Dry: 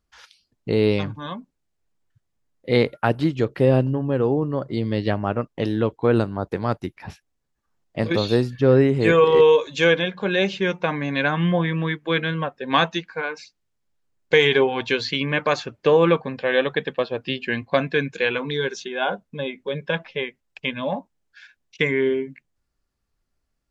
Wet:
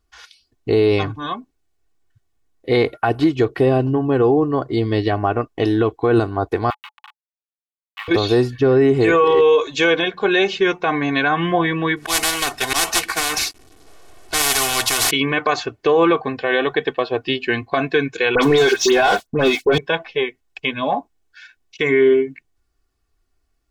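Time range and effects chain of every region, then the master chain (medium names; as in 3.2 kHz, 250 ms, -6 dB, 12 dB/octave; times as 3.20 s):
6.70–8.08 s: send-on-delta sampling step -26 dBFS + rippled Chebyshev high-pass 830 Hz, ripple 6 dB + resonant high shelf 4.1 kHz -13.5 dB, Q 1.5
11.96–15.11 s: CVSD coder 64 kbps + slow attack 104 ms + spectrum-flattening compressor 10:1
18.35–19.78 s: waveshaping leveller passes 3 + phase dispersion highs, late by 75 ms, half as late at 2.6 kHz
whole clip: comb 2.7 ms, depth 66%; dynamic bell 860 Hz, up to +4 dB, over -32 dBFS, Q 1; peak limiter -10.5 dBFS; trim +4 dB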